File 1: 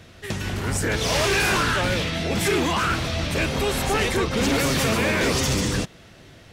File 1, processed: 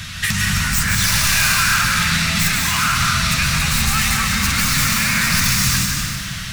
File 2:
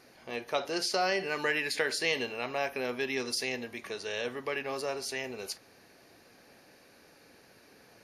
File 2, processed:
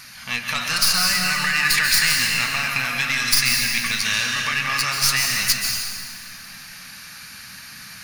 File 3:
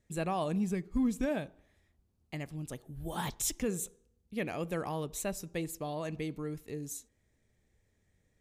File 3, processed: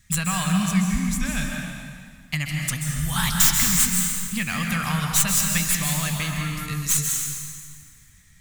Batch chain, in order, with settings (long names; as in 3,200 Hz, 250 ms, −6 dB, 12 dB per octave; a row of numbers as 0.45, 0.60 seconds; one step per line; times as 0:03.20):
stylus tracing distortion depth 0.09 ms
dynamic equaliser 3,200 Hz, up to −7 dB, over −47 dBFS, Q 5
flanger 1.7 Hz, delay 2.9 ms, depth 1.8 ms, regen +73%
brickwall limiter −26.5 dBFS
downward compressor, threshold −38 dBFS
drawn EQ curve 190 Hz 0 dB, 380 Hz −29 dB, 630 Hz −18 dB, 1,200 Hz +1 dB, 7,700 Hz +7 dB
dense smooth reverb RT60 2 s, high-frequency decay 0.85×, pre-delay 120 ms, DRR 0.5 dB
normalise the peak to −2 dBFS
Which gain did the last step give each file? +21.0, +20.0, +20.0 decibels